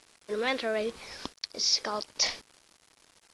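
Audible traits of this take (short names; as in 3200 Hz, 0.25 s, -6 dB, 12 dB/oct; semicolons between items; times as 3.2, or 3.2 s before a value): a quantiser's noise floor 8-bit, dither none; AAC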